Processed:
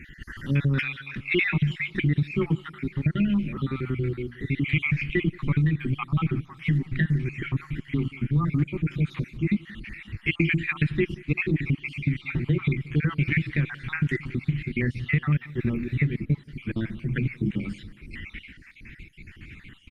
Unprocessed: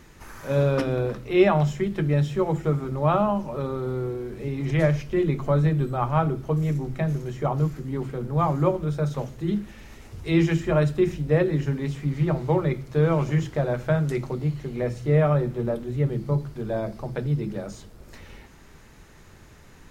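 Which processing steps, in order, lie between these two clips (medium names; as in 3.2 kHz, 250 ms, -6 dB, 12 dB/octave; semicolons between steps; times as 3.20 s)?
random holes in the spectrogram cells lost 51%; 3.48–4.37 s: hum notches 60/120/180/240 Hz; 6.02–6.61 s: gate with hold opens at -60 dBFS; FFT filter 310 Hz 0 dB, 630 Hz -29 dB, 2.3 kHz +13 dB, 6 kHz -13 dB; compression 16:1, threshold -25 dBFS, peak gain reduction 9 dB; on a send: feedback delay 178 ms, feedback 54%, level -22 dB; on the sum: trim +6.5 dB; Opus 32 kbps 48 kHz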